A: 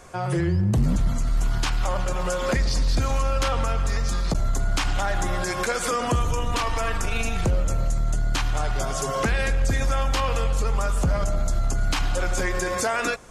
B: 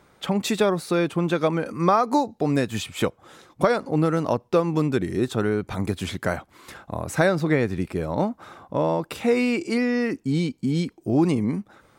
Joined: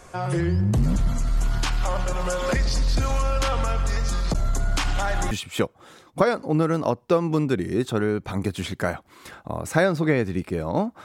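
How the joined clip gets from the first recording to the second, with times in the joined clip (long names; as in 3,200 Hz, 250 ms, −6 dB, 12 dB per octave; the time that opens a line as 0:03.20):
A
0:05.31: continue with B from 0:02.74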